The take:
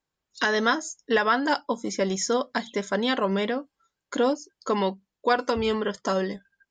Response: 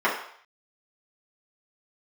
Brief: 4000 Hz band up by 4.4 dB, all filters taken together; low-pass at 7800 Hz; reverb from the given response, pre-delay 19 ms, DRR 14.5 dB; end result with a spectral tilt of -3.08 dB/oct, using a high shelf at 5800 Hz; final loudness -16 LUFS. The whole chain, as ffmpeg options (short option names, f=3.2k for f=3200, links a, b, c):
-filter_complex "[0:a]lowpass=7.8k,equalizer=f=4k:t=o:g=4,highshelf=f=5.8k:g=5.5,asplit=2[a][b];[1:a]atrim=start_sample=2205,adelay=19[c];[b][c]afir=irnorm=-1:irlink=0,volume=-32dB[d];[a][d]amix=inputs=2:normalize=0,volume=9dB"